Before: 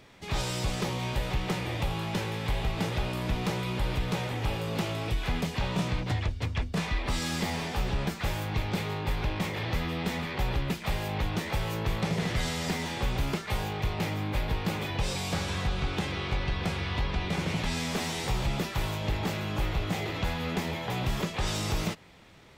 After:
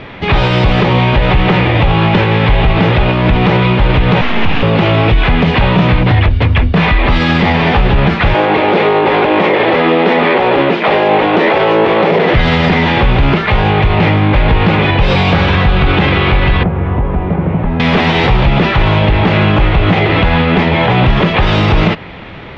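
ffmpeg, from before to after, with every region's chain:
-filter_complex "[0:a]asettb=1/sr,asplit=3[a][b][c];[a]atrim=end=4.214[d];[b]atrim=start=4.21:end=4.63,asetpts=PTS-STARTPTS,afade=t=in:d=0.004:c=qsin,afade=t=out:st=0.416:d=0.004:c=qsin,equalizer=f=500:t=o:w=0.92:g=-13,aecho=1:1:2.5:0.39,atrim=end_sample=18522,aeval=exprs='abs(val(0))':c=same[e];[c]atrim=start=4.626[f];[d][e]acrossfade=d=0.004:c1=hsin:c2=qsin[g];[g][f]acrossfade=d=0.004:c1=qsin:c2=hsin,asettb=1/sr,asplit=3[h][i][j];[h]atrim=end=8.344[k];[i]atrim=start=8.34:end=12.34,asetpts=PTS-STARTPTS,afade=t=in:d=0.004:c=qsin,afade=t=out:st=3.996:d=0.004:c=qsin,highpass=310,equalizer=f=430:w=0.59:g=9[l];[j]atrim=start=12.336[m];[k][l]acrossfade=d=0.004:c1=hsin:c2=qsin[n];[n][m]acrossfade=d=0.004:c1=qsin:c2=hsin,asettb=1/sr,asplit=3[o][p][q];[o]atrim=end=16.634[r];[p]atrim=start=16.63:end=17.8,asetpts=PTS-STARTPTS,afade=t=in:d=0.004:c=qsin,afade=t=out:st=1.166:d=0.004:c=qsin,lowpass=1k,acrossover=split=220|500[s][t][u];[s]acompressor=threshold=-39dB:ratio=4[v];[t]acompressor=threshold=-48dB:ratio=4[w];[u]acompressor=threshold=-50dB:ratio=4[x];[v][w][x]amix=inputs=3:normalize=0[y];[q]atrim=start=17.796[z];[r][y]acrossfade=d=0.004:c1=hsin:c2=qsin[aa];[aa][z]acrossfade=d=0.004:c1=qsin:c2=hsin,lowpass=f=3.2k:w=0.5412,lowpass=f=3.2k:w=1.3066,alimiter=level_in=26.5dB:limit=-1dB:release=50:level=0:latency=1,volume=-1dB"

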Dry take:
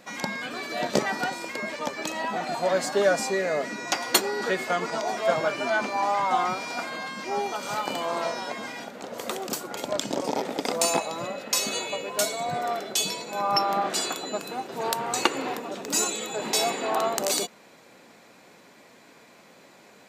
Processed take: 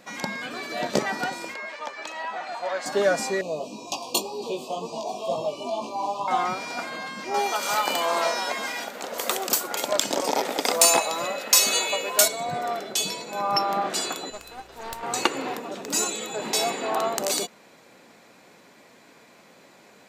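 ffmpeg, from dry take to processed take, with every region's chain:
-filter_complex "[0:a]asettb=1/sr,asplit=3[a][b][c];[a]atrim=end=1.544[d];[b]atrim=start=1.54:end=2.86,asetpts=PTS-STARTPTS,afade=t=in:d=0.004:c=qsin,afade=t=out:st=1.316:d=0.004:c=qsin,highpass=800,aemphasis=mode=reproduction:type=bsi[e];[c]atrim=start=2.856[f];[d][e]acrossfade=d=0.004:c1=hsin:c2=qsin[g];[g][f]acrossfade=d=0.004:c1=qsin:c2=hsin,asettb=1/sr,asplit=3[h][i][j];[h]atrim=end=3.414[k];[i]atrim=start=3.41:end=6.28,asetpts=PTS-STARTPTS,afade=t=in:d=0.004:c=qsin,afade=t=out:st=2.866:d=0.004:c=qsin,asuperstop=centerf=1700:order=20:qfactor=1.3,flanger=delay=17:depth=3.4:speed=2[l];[j]atrim=start=6.276[m];[k][l]acrossfade=d=0.004:c1=hsin:c2=qsin[n];[n][m]acrossfade=d=0.004:c1=qsin:c2=hsin,asettb=1/sr,asplit=3[o][p][q];[o]atrim=end=7.344[r];[p]atrim=start=7.34:end=12.28,asetpts=PTS-STARTPTS,afade=t=in:d=0.004:c=qsin,afade=t=out:st=4.936:d=0.004:c=qsin,highshelf=f=12k:g=10.5,acontrast=73,highpass=f=630:p=1[s];[q]atrim=start=12.276[t];[r][s]acrossfade=d=0.004:c1=hsin:c2=qsin[u];[u][t]acrossfade=d=0.004:c1=qsin:c2=hsin,asettb=1/sr,asplit=3[v][w][x];[v]atrim=end=14.304[y];[w]atrim=start=14.3:end=15.03,asetpts=PTS-STARTPTS,afade=t=in:d=0.004:c=qsin,afade=t=out:st=0.726:d=0.004:c=qsin,highpass=f=770:p=1,aeval=exprs='val(0)+0.00251*(sin(2*PI*60*n/s)+sin(2*PI*2*60*n/s)/2+sin(2*PI*3*60*n/s)/3+sin(2*PI*4*60*n/s)/4+sin(2*PI*5*60*n/s)/5)':c=same,aeval=exprs='(tanh(17.8*val(0)+0.8)-tanh(0.8))/17.8':c=same[z];[x]atrim=start=15.026[aa];[y][z]acrossfade=d=0.004:c1=hsin:c2=qsin[ab];[ab][aa]acrossfade=d=0.004:c1=qsin:c2=hsin"

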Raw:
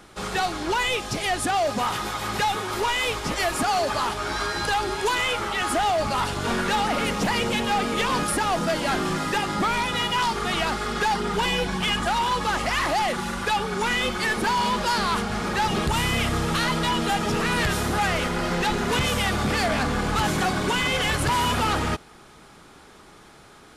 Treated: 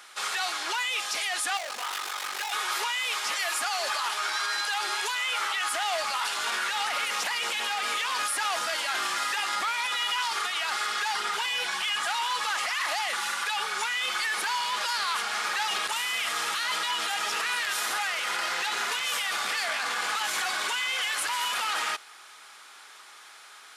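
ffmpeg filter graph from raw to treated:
-filter_complex "[0:a]asettb=1/sr,asplit=3[a][b][c];[a]atrim=end=1.574[d];[b]atrim=start=1.57:end=2.52,asetpts=PTS-STARTPTS,afade=t=in:d=0.004:c=qsin,afade=t=out:st=0.946:d=0.004:c=qsin,aeval=exprs='val(0)*sin(2*PI*24*n/s)':c=same,asoftclip=type=hard:threshold=-31.5dB,equalizer=f=370:w=0.92:g=6.5[e];[c]atrim=start=2.516[f];[d][e]acrossfade=d=0.004:c1=hsin:c2=qsin[g];[g][f]acrossfade=d=0.004:c1=qsin:c2=hsin,highpass=1.3k,alimiter=level_in=0.5dB:limit=-24dB:level=0:latency=1:release=22,volume=-0.5dB,volume=4.5dB"

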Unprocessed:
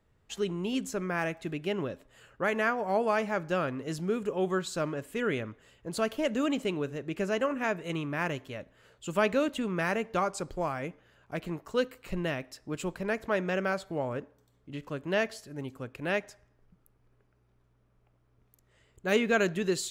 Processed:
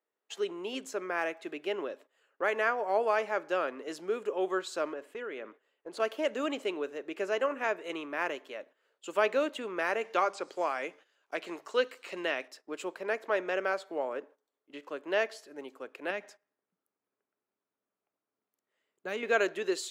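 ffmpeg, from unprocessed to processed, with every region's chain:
-filter_complex "[0:a]asettb=1/sr,asplit=3[a][b][c];[a]atrim=end=4.934[d];[b]atrim=start=4.93:end=6,asetpts=PTS-STARTPTS,afade=t=in:d=0.004:c=qsin,afade=t=out:st=1.066:d=0.004:c=qsin,highshelf=f=4.8k:g=-10,acompressor=threshold=-33dB:ratio=5:attack=3.2:release=140:knee=1:detection=peak[e];[c]atrim=start=5.996[f];[d][e]acrossfade=d=0.004:c1=hsin:c2=qsin[g];[g][f]acrossfade=d=0.004:c1=qsin:c2=hsin,asettb=1/sr,asplit=3[h][i][j];[h]atrim=end=10.014[k];[i]atrim=start=10.01:end=12.48,asetpts=PTS-STARTPTS,afade=t=in:d=0.004:c=qsin,afade=t=out:st=2.466:d=0.004:c=qsin,equalizer=f=6.5k:t=o:w=2.5:g=13,bandreject=f=50:t=h:w=6,bandreject=f=100:t=h:w=6,bandreject=f=150:t=h:w=6,bandreject=f=200:t=h:w=6,acrossover=split=3300[l][m];[m]acompressor=threshold=-49dB:ratio=4:attack=1:release=60[n];[l][n]amix=inputs=2:normalize=0[o];[j]atrim=start=12.476[p];[k][o]acrossfade=d=0.004:c1=hsin:c2=qsin[q];[q][p]acrossfade=d=0.004:c1=qsin:c2=hsin,asettb=1/sr,asplit=3[r][s][t];[r]atrim=end=16.104[u];[s]atrim=start=16.1:end=19.23,asetpts=PTS-STARTPTS,afade=t=in:d=0.004:c=qsin,afade=t=out:st=3.126:d=0.004:c=qsin,lowshelf=f=270:t=q:w=1.5:g=7.5,acompressor=threshold=-29dB:ratio=3:attack=3.2:release=140:knee=1:detection=peak[v];[t]atrim=start=19.226[w];[u][v]acrossfade=d=0.004:c1=hsin:c2=qsin[x];[x][w]acrossfade=d=0.004:c1=qsin:c2=hsin,highpass=f=340:w=0.5412,highpass=f=340:w=1.3066,highshelf=f=6.4k:g=-8,agate=range=-13dB:threshold=-53dB:ratio=16:detection=peak"

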